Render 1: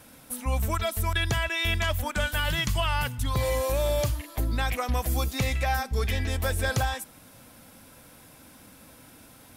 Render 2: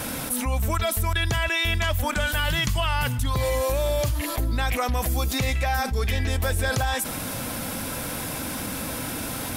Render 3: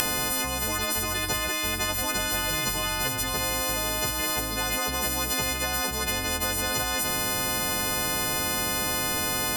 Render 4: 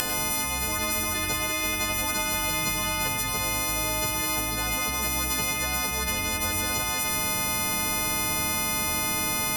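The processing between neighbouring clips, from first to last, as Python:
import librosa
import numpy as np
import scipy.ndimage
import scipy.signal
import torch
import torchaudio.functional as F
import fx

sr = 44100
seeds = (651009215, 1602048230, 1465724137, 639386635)

y1 = fx.env_flatten(x, sr, amount_pct=70)
y2 = fx.freq_snap(y1, sr, grid_st=3)
y2 = fx.spectral_comp(y2, sr, ratio=4.0)
y3 = fx.echo_feedback(y2, sr, ms=356, feedback_pct=52, wet_db=-14.5)
y3 = fx.rev_plate(y3, sr, seeds[0], rt60_s=0.59, hf_ratio=0.75, predelay_ms=85, drr_db=3.5)
y3 = y3 * librosa.db_to_amplitude(-2.0)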